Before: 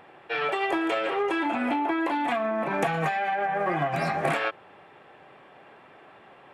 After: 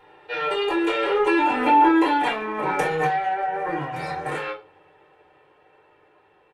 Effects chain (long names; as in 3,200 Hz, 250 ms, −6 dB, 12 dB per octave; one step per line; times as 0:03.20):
source passing by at 0:01.93, 12 m/s, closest 9.1 metres
comb filter 2.2 ms, depth 67%
convolution reverb RT60 0.30 s, pre-delay 3 ms, DRR −4.5 dB